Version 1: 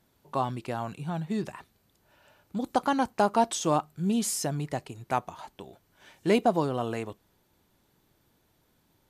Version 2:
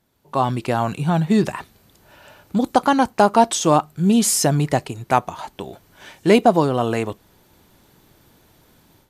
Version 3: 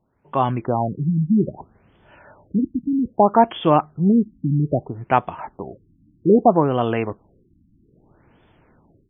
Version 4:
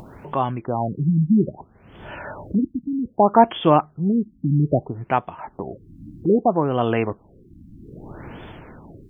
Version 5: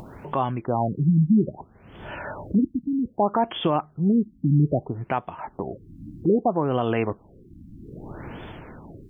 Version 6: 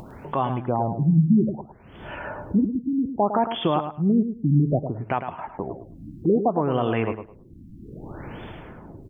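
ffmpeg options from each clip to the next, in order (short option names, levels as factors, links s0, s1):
-af "dynaudnorm=f=250:g=3:m=5.01"
-af "afftfilt=real='re*lt(b*sr/1024,300*pow(3600/300,0.5+0.5*sin(2*PI*0.62*pts/sr)))':imag='im*lt(b*sr/1024,300*pow(3600/300,0.5+0.5*sin(2*PI*0.62*pts/sr)))':win_size=1024:overlap=0.75"
-af "acompressor=mode=upward:threshold=0.0708:ratio=2.5,tremolo=f=0.85:d=0.49,volume=1.19"
-af "alimiter=limit=0.266:level=0:latency=1:release=182"
-af "aecho=1:1:106|212|318:0.355|0.071|0.0142"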